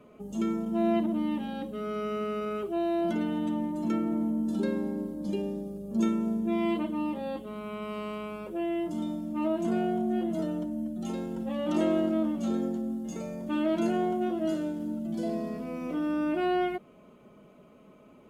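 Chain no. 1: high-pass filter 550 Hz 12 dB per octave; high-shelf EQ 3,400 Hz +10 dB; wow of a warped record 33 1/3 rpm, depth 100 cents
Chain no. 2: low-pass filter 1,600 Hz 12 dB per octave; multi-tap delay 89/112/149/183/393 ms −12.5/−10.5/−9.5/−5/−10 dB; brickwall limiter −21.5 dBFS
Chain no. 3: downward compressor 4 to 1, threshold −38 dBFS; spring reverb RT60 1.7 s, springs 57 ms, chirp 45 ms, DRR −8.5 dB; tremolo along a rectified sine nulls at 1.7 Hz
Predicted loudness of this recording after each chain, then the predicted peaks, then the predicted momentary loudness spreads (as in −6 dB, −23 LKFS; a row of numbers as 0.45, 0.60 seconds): −37.0, −30.0, −35.0 LKFS; −20.5, −21.5, −18.0 dBFS; 9, 6, 11 LU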